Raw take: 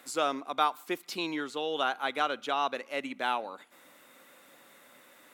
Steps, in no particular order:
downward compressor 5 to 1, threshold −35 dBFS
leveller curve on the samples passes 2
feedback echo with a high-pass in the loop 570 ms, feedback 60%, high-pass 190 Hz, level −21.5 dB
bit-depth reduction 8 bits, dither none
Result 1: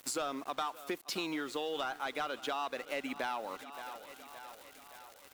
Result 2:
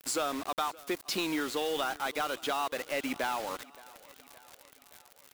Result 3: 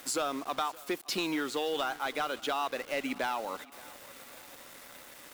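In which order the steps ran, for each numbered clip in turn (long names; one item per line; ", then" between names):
leveller curve on the samples, then bit-depth reduction, then feedback echo with a high-pass in the loop, then downward compressor
downward compressor, then bit-depth reduction, then leveller curve on the samples, then feedback echo with a high-pass in the loop
downward compressor, then leveller curve on the samples, then bit-depth reduction, then feedback echo with a high-pass in the loop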